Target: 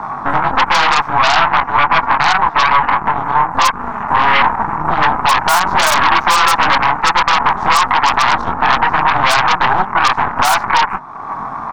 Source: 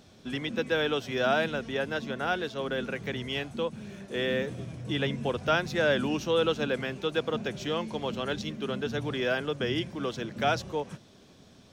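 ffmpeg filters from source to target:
ffmpeg -i in.wav -filter_complex "[0:a]asettb=1/sr,asplit=3[link_01][link_02][link_03];[link_01]atrim=end=0.984[link_04];[link_02]atrim=start=0.98:end=3.53,asetpts=PTS-STARTPTS,afade=type=in:duration=0.004:curve=qsin,afade=type=out:start_time=2.546:duration=0.004:curve=qsin,acrossover=split=340|940[link_05][link_06][link_07];[link_05]acompressor=threshold=-39dB:ratio=4[link_08];[link_06]acompressor=threshold=-31dB:ratio=4[link_09];[link_07]acompressor=threshold=-40dB:ratio=4[link_10];[link_08][link_09][link_10]amix=inputs=3:normalize=0[link_11];[link_03]atrim=start=3.526[link_12];[link_04][link_11]acrossfade=duration=0.004:curve1=hsin:curve2=qsin[link_13];[link_13][link_12]acrossfade=duration=0.004:curve1=qsin:curve2=hsin,firequalizer=gain_entry='entry(350,0);entry(1100,13);entry(2200,-28)':delay=0.05:min_phase=1,afreqshift=33,flanger=delay=20:depth=2.5:speed=0.99,aeval=exprs='0.112*(cos(1*acos(clip(val(0)/0.112,-1,1)))-cos(1*PI/2))+0.0501*(cos(8*acos(clip(val(0)/0.112,-1,1)))-cos(8*PI/2))':channel_layout=same,acompressor=threshold=-53dB:ratio=2,lowshelf=frequency=690:width_type=q:width=3:gain=-9.5,alimiter=level_in=36dB:limit=-1dB:release=50:level=0:latency=1,volume=-1dB" out.wav

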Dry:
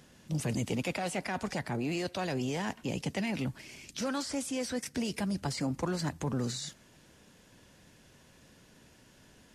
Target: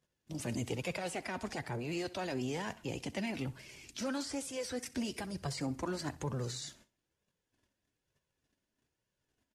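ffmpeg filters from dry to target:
ffmpeg -i in.wav -af "flanger=delay=1.7:depth=1.7:regen=-36:speed=1.1:shape=triangular,agate=range=-23dB:threshold=-59dB:ratio=16:detection=peak,aecho=1:1:64|128|192:0.112|0.0359|0.0115" out.wav

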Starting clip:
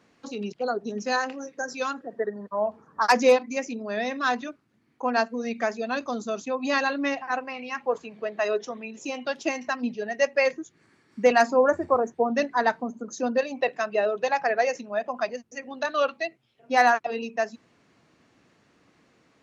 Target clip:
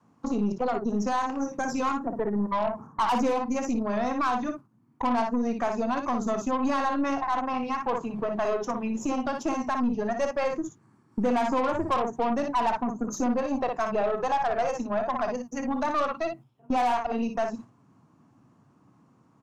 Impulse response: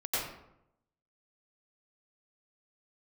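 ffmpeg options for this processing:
-filter_complex "[0:a]adynamicequalizer=threshold=0.00794:dfrequency=230:dqfactor=1.3:tfrequency=230:tqfactor=1.3:attack=5:release=100:ratio=0.375:range=3.5:mode=cutabove:tftype=bell,agate=range=-11dB:threshold=-48dB:ratio=16:detection=peak,equalizer=frequency=125:width_type=o:width=1:gain=11,equalizer=frequency=250:width_type=o:width=1:gain=7,equalizer=frequency=500:width_type=o:width=1:gain=-6,equalizer=frequency=1000:width_type=o:width=1:gain=11,equalizer=frequency=2000:width_type=o:width=1:gain=-11,equalizer=frequency=4000:width_type=o:width=1:gain=-10,asplit=2[link_01][link_02];[link_02]acompressor=threshold=-34dB:ratio=6,volume=1dB[link_03];[link_01][link_03]amix=inputs=2:normalize=0,asoftclip=type=tanh:threshold=-12.5dB,aecho=1:1:30|58:0.141|0.447,aeval=exprs='0.355*(cos(1*acos(clip(val(0)/0.355,-1,1)))-cos(1*PI/2))+0.02*(cos(8*acos(clip(val(0)/0.355,-1,1)))-cos(8*PI/2))':channel_layout=same,alimiter=limit=-18.5dB:level=0:latency=1:release=81"

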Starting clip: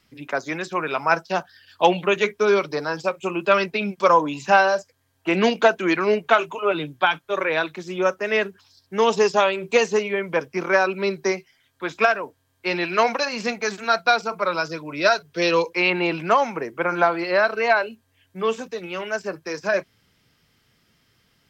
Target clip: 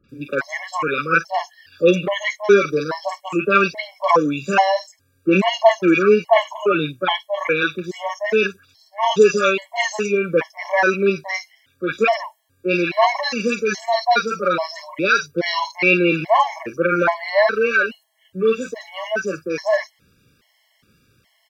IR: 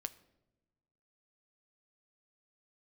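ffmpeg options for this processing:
-filter_complex "[0:a]acrossover=split=1000|4800[link_01][link_02][link_03];[link_02]adelay=40[link_04];[link_03]adelay=90[link_05];[link_01][link_04][link_05]amix=inputs=3:normalize=0,afftfilt=real='re*gt(sin(2*PI*1.2*pts/sr)*(1-2*mod(floor(b*sr/1024/560),2)),0)':imag='im*gt(sin(2*PI*1.2*pts/sr)*(1-2*mod(floor(b*sr/1024/560),2)),0)':win_size=1024:overlap=0.75,volume=7dB"

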